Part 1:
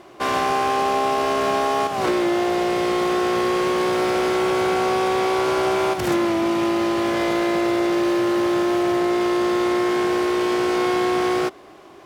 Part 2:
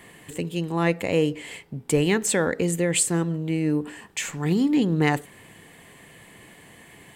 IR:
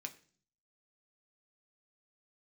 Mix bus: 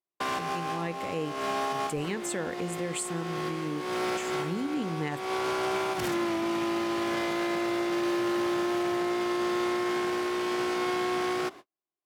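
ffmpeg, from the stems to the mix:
-filter_complex "[0:a]highpass=f=140:p=1,equalizer=f=510:t=o:w=1:g=-5,volume=-2dB[a];[1:a]volume=-11dB,asplit=2[b][c];[c]apad=whole_len=531661[d];[a][d]sidechaincompress=threshold=-46dB:ratio=4:attack=12:release=233[e];[e][b]amix=inputs=2:normalize=0,agate=range=-50dB:threshold=-40dB:ratio=16:detection=peak,alimiter=limit=-21.5dB:level=0:latency=1:release=39"

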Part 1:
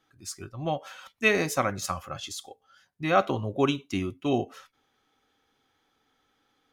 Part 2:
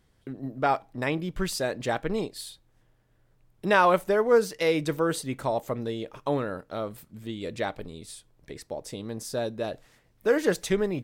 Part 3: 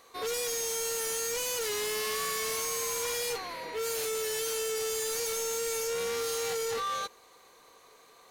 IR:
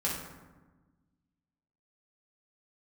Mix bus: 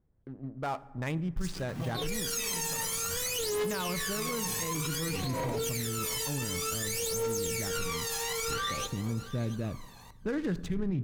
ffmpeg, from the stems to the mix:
-filter_complex "[0:a]acrossover=split=160|3000[a][b][c];[b]acompressor=threshold=-37dB:ratio=6[d];[a][d][c]amix=inputs=3:normalize=0,acrusher=bits=6:mix=0:aa=0.000001,adelay=1150,volume=-11dB,asplit=2[e][f];[f]volume=-4dB[g];[1:a]asubboost=boost=9:cutoff=180,adynamicsmooth=sensitivity=7.5:basefreq=850,volume=-7dB,asplit=2[h][i];[i]volume=-23dB[j];[2:a]aphaser=in_gain=1:out_gain=1:delay=1.2:decay=0.79:speed=0.55:type=triangular,adelay=1800,volume=0dB,asplit=3[k][l][m];[l]volume=-19dB[n];[m]volume=-16dB[o];[3:a]atrim=start_sample=2205[p];[g][j][n]amix=inputs=3:normalize=0[q];[q][p]afir=irnorm=-1:irlink=0[r];[o]aecho=0:1:683:1[s];[e][h][k][r][s]amix=inputs=5:normalize=0,alimiter=level_in=0.5dB:limit=-24dB:level=0:latency=1:release=25,volume=-0.5dB"

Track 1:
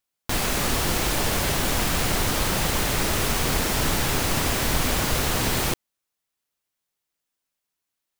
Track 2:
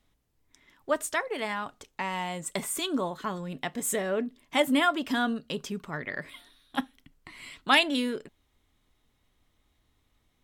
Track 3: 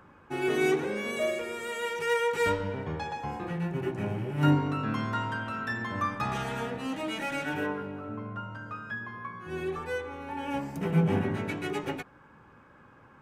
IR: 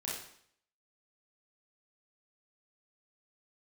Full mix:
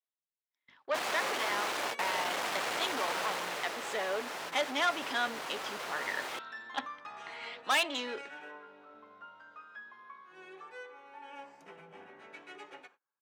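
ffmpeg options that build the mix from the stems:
-filter_complex "[0:a]aemphasis=mode=reproduction:type=75kf,aeval=exprs='val(0)+0.0112*(sin(2*PI*50*n/s)+sin(2*PI*2*50*n/s)/2+sin(2*PI*3*50*n/s)/3+sin(2*PI*4*50*n/s)/4+sin(2*PI*5*50*n/s)/5)':c=same,adelay=650,volume=-1.5dB,afade=t=out:st=3.06:d=0.72:silence=0.421697[a];[1:a]lowpass=f=4.8k:w=0.5412,lowpass=f=4.8k:w=1.3066,volume=1dB,asplit=2[b][c];[2:a]lowpass=6.7k,alimiter=limit=-23dB:level=0:latency=1:release=338,adelay=850,volume=-11dB,asplit=2[d][e];[e]volume=-17dB[f];[c]apad=whole_len=390135[g];[a][g]sidechaingate=range=-33dB:threshold=-57dB:ratio=16:detection=peak[h];[3:a]atrim=start_sample=2205[i];[f][i]afir=irnorm=-1:irlink=0[j];[h][b][d][j]amix=inputs=4:normalize=0,asoftclip=type=tanh:threshold=-22.5dB,agate=range=-27dB:threshold=-57dB:ratio=16:detection=peak,highpass=600"

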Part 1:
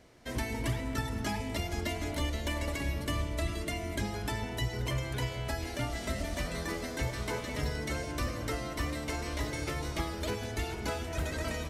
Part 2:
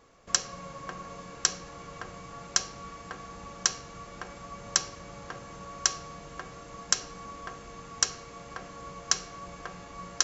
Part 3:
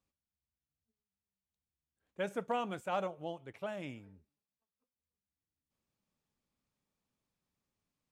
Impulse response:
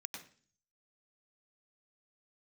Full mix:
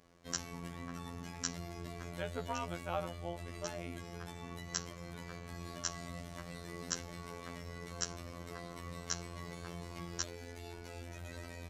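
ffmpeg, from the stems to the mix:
-filter_complex "[0:a]alimiter=level_in=6.5dB:limit=-24dB:level=0:latency=1:release=19,volume=-6.5dB,volume=-5.5dB[a];[1:a]equalizer=f=140:w=0.98:g=14.5,volume=-9.5dB[b];[2:a]volume=0.5dB,asplit=2[c][d];[d]apad=whole_len=451177[e];[b][e]sidechaincompress=threshold=-41dB:ratio=8:attack=16:release=555[f];[a][f][c]amix=inputs=3:normalize=0,afftfilt=real='hypot(re,im)*cos(PI*b)':imag='0':win_size=2048:overlap=0.75"

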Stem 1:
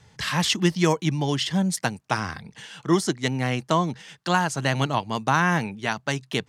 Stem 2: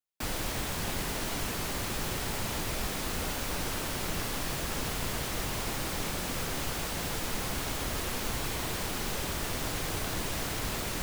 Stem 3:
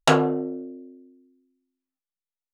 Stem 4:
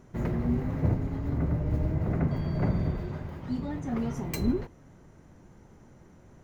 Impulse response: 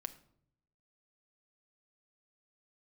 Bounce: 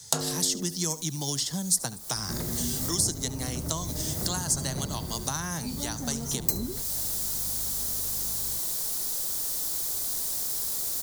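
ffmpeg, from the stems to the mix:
-filter_complex "[0:a]volume=-4.5dB,asplit=3[a][b][c];[b]volume=-18dB[d];[1:a]equalizer=f=720:w=0.57:g=8,acrossover=split=480|1700|4000[e][f][g][h];[e]acompressor=threshold=-36dB:ratio=4[i];[f]acompressor=threshold=-42dB:ratio=4[j];[g]acompressor=threshold=-44dB:ratio=4[k];[h]acompressor=threshold=-45dB:ratio=4[l];[i][j][k][l]amix=inputs=4:normalize=0,volume=-12.5dB,asplit=2[m][n];[n]volume=-10dB[o];[2:a]adelay=50,volume=-2.5dB[p];[3:a]aeval=exprs='val(0)+0.00562*(sin(2*PI*50*n/s)+sin(2*PI*2*50*n/s)/2+sin(2*PI*3*50*n/s)/3+sin(2*PI*4*50*n/s)/4+sin(2*PI*5*50*n/s)/5)':c=same,adelay=2150,volume=1.5dB,asplit=2[q][r];[r]volume=-18dB[s];[c]apad=whole_len=486337[t];[m][t]sidechaincompress=threshold=-34dB:ratio=8:attack=9.4:release=560[u];[d][o][s]amix=inputs=3:normalize=0,aecho=0:1:71:1[v];[a][u][p][q][v]amix=inputs=5:normalize=0,highshelf=f=5.7k:g=8.5,acrossover=split=160|1500[w][x][y];[w]acompressor=threshold=-37dB:ratio=4[z];[x]acompressor=threshold=-35dB:ratio=4[aa];[y]acompressor=threshold=-46dB:ratio=4[ab];[z][aa][ab]amix=inputs=3:normalize=0,aexciter=amount=6.3:drive=8:freq=3.9k"

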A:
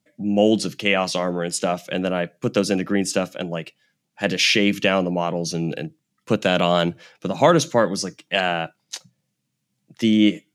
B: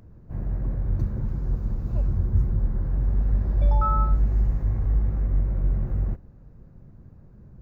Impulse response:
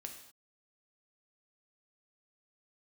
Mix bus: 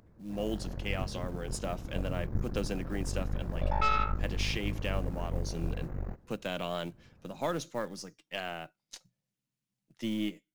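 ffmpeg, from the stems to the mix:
-filter_complex "[0:a]aeval=exprs='if(lt(val(0),0),0.708*val(0),val(0))':c=same,dynaudnorm=f=120:g=7:m=6dB,acrusher=bits=6:mode=log:mix=0:aa=0.000001,volume=-18dB[a];[1:a]lowshelf=f=190:g=-11.5,aeval=exprs='0.2*(cos(1*acos(clip(val(0)/0.2,-1,1)))-cos(1*PI/2))+0.0158*(cos(3*acos(clip(val(0)/0.2,-1,1)))-cos(3*PI/2))+0.0447*(cos(4*acos(clip(val(0)/0.2,-1,1)))-cos(4*PI/2))+0.0126*(cos(6*acos(clip(val(0)/0.2,-1,1)))-cos(6*PI/2))+0.0178*(cos(8*acos(clip(val(0)/0.2,-1,1)))-cos(8*PI/2))':c=same,volume=-1.5dB[b];[a][b]amix=inputs=2:normalize=0"

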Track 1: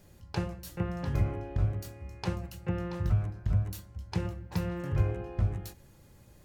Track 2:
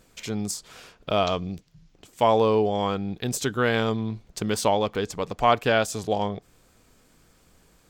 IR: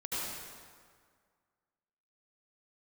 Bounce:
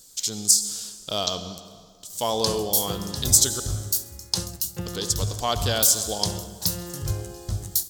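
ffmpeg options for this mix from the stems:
-filter_complex "[0:a]adelay=2100,volume=-1dB,asplit=2[a][b];[b]volume=-20dB[c];[1:a]highshelf=f=5.5k:g=-6.5,volume=-7.5dB,asplit=3[d][e][f];[d]atrim=end=3.6,asetpts=PTS-STARTPTS,afade=t=out:st=3.596:d=0.004:c=hsin[g];[e]atrim=start=3.6:end=4.86,asetpts=PTS-STARTPTS,volume=0[h];[f]atrim=start=4.86,asetpts=PTS-STARTPTS,afade=t=in:d=0.004:c=hsin[i];[g][h][i]concat=n=3:v=0:a=1,asplit=2[j][k];[k]volume=-13.5dB[l];[2:a]atrim=start_sample=2205[m];[l][m]afir=irnorm=-1:irlink=0[n];[c]aecho=0:1:66|132|198|264|330|396|462|528|594:1|0.59|0.348|0.205|0.121|0.0715|0.0422|0.0249|0.0147[o];[a][j][n][o]amix=inputs=4:normalize=0,aexciter=amount=12.7:drive=7.4:freq=3.7k"

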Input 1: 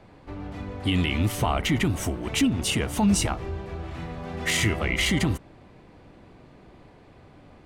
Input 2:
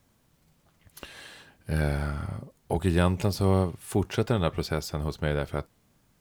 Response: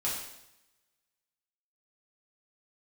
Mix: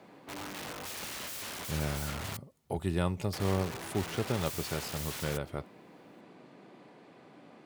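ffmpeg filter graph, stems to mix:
-filter_complex "[0:a]highpass=f=170:w=0.5412,highpass=f=170:w=1.3066,alimiter=limit=-20.5dB:level=0:latency=1:release=20,aeval=exprs='(mod(50.1*val(0)+1,2)-1)/50.1':c=same,volume=-2dB,asplit=3[a][b][c];[a]atrim=end=2.37,asetpts=PTS-STARTPTS,afade=t=out:st=2.366:d=0.004:c=hsin[d];[b]atrim=start=2.37:end=3.33,asetpts=PTS-STARTPTS,volume=0[e];[c]atrim=start=3.33,asetpts=PTS-STARTPTS,afade=t=in:d=0.004:c=hsin[f];[d][e][f]concat=n=3:v=0:a=1[g];[1:a]bandreject=f=1.6k:w=12,volume=-7dB[h];[g][h]amix=inputs=2:normalize=0,highpass=60"

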